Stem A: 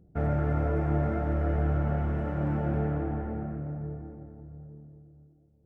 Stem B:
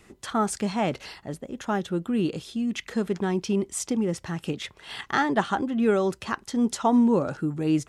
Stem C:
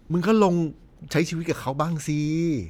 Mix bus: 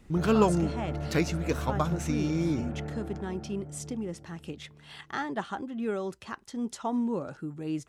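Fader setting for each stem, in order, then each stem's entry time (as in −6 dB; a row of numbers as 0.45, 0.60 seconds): −8.0, −9.5, −4.5 decibels; 0.00, 0.00, 0.00 seconds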